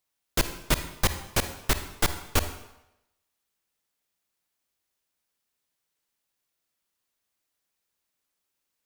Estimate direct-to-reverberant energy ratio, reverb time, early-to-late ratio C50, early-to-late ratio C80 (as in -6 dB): 9.0 dB, 0.90 s, 10.0 dB, 12.5 dB